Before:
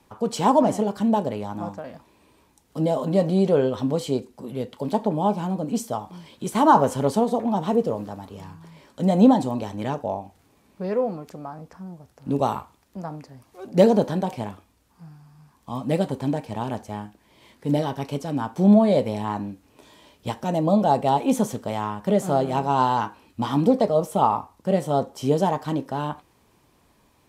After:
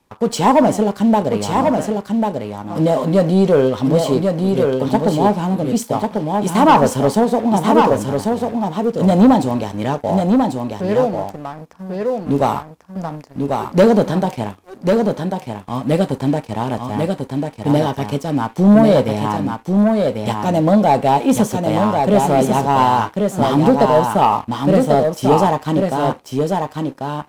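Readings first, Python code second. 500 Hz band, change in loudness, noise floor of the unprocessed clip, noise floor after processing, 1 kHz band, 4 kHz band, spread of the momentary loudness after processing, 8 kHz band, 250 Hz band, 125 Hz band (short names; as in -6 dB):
+7.5 dB, +6.5 dB, -61 dBFS, -41 dBFS, +7.5 dB, +8.5 dB, 11 LU, +8.5 dB, +7.5 dB, +8.0 dB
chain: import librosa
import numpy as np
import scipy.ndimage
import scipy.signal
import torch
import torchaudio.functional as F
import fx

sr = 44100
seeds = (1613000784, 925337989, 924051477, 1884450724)

y = fx.leveller(x, sr, passes=2)
y = y + 10.0 ** (-4.0 / 20.0) * np.pad(y, (int(1093 * sr / 1000.0), 0))[:len(y)]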